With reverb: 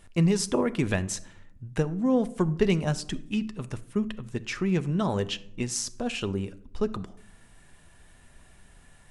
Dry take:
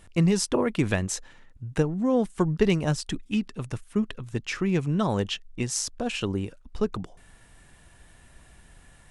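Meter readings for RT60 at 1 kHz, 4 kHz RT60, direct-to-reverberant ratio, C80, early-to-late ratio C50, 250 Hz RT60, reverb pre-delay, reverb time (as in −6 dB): 0.60 s, 0.40 s, 11.5 dB, 22.0 dB, 18.5 dB, 1.0 s, 5 ms, 0.75 s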